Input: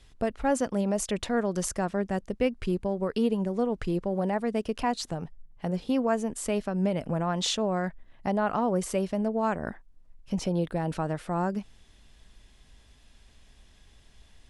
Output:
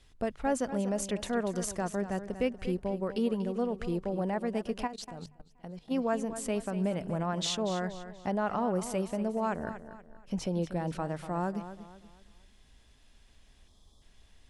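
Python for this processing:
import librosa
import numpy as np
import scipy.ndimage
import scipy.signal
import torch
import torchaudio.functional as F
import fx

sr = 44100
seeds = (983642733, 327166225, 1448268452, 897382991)

y = fx.spec_erase(x, sr, start_s=13.68, length_s=0.34, low_hz=1300.0, high_hz=3100.0)
y = fx.echo_feedback(y, sr, ms=239, feedback_pct=37, wet_db=-12)
y = fx.level_steps(y, sr, step_db=19, at=(4.86, 5.9), fade=0.02)
y = fx.hum_notches(y, sr, base_hz=50, count=3)
y = y * 10.0 ** (-4.0 / 20.0)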